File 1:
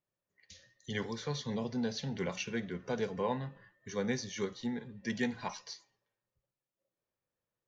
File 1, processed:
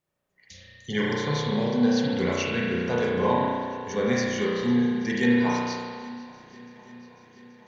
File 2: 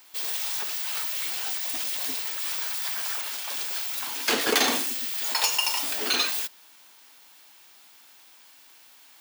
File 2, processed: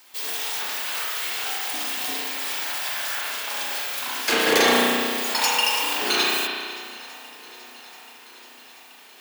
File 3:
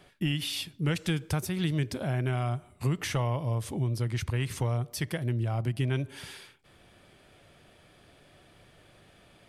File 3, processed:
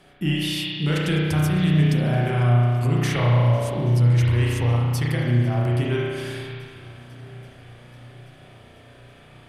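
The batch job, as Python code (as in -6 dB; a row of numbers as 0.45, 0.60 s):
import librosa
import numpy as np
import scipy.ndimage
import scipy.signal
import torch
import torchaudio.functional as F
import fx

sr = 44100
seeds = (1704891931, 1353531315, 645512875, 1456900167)

y = fx.echo_swing(x, sr, ms=830, ratio=1.5, feedback_pct=62, wet_db=-22.0)
y = fx.rev_spring(y, sr, rt60_s=1.9, pass_ms=(33,), chirp_ms=45, drr_db=-5.0)
y = fx.fold_sine(y, sr, drive_db=4, ceiling_db=-3.0)
y = y * 10.0 ** (-9 / 20.0) / np.max(np.abs(y))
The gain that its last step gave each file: -2.0, -6.5, -5.5 dB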